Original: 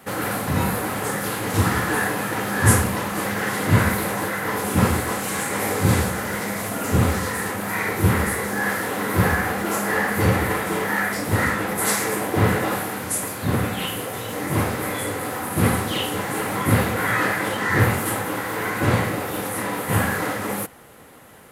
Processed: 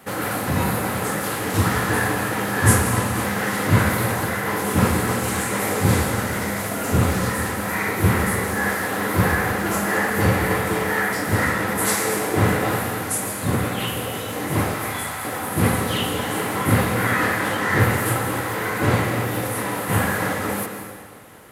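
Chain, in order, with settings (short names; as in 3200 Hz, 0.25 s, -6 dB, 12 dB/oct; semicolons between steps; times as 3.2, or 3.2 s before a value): 14.74–15.25 steep high-pass 660 Hz; digital reverb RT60 1.8 s, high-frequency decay 0.95×, pre-delay 0.1 s, DRR 6 dB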